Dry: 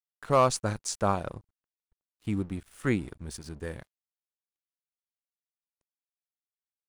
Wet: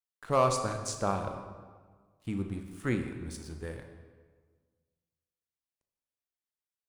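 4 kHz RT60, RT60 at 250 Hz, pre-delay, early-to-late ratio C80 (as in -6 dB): 1.0 s, 1.7 s, 17 ms, 8.5 dB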